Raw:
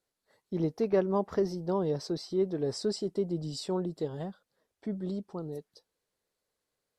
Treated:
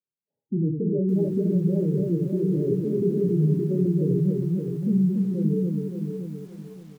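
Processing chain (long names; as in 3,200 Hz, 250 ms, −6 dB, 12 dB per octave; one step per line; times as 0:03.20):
leveller curve on the samples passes 5
high-pass filter 130 Hz 24 dB per octave
low-shelf EQ 270 Hz +6.5 dB
on a send: loudspeakers that aren't time-aligned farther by 11 metres −5 dB, 29 metres −5 dB, 97 metres −3 dB
on the sum: brickwall limiter −7.5 dBFS, peak gain reduction 4.5 dB
low-pass filter 1,100 Hz 6 dB per octave
spectral tilt −3.5 dB per octave
gate on every frequency bin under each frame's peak −15 dB strong
tuned comb filter 410 Hz, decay 0.39 s, harmonics all, mix 70%
feedback echo at a low word length 569 ms, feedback 35%, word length 8 bits, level −6 dB
level −4.5 dB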